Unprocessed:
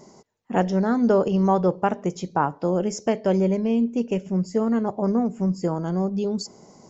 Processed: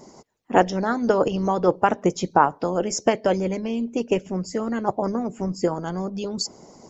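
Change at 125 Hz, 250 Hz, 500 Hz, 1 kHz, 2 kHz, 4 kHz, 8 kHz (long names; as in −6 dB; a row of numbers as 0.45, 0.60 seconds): −4.0 dB, −3.5 dB, +0.5 dB, +4.0 dB, +5.5 dB, +6.5 dB, can't be measured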